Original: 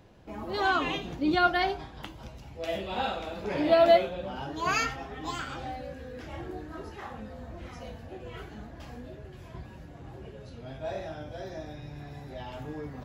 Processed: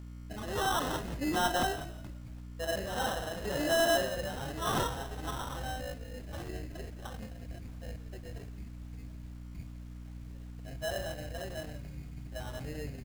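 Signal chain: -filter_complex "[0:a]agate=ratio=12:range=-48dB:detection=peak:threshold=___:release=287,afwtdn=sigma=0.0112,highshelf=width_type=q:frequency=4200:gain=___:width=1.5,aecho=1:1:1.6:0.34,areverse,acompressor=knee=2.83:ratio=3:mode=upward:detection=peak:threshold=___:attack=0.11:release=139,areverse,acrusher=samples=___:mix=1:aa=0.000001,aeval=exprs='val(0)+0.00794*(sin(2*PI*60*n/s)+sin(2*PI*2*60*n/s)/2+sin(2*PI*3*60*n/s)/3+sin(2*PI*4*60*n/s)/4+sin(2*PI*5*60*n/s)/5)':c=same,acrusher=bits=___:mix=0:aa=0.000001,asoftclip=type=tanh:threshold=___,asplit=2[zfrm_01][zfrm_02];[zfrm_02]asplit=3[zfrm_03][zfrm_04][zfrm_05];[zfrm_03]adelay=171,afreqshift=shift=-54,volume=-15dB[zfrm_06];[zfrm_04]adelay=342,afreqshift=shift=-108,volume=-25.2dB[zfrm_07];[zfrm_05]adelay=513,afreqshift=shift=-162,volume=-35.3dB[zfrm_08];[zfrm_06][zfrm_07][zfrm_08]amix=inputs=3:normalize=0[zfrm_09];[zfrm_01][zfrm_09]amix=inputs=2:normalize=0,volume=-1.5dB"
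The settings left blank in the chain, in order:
-40dB, 14, -44dB, 19, 9, -22.5dB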